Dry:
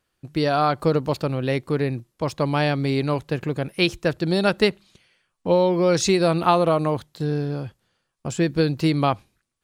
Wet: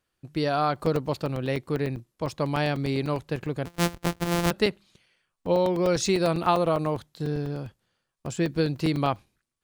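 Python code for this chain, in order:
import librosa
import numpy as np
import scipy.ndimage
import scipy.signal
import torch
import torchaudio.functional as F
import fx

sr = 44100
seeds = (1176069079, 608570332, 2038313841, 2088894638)

y = fx.sample_sort(x, sr, block=256, at=(3.65, 4.51))
y = fx.buffer_crackle(y, sr, first_s=0.76, period_s=0.1, block=128, kind='zero')
y = F.gain(torch.from_numpy(y), -4.5).numpy()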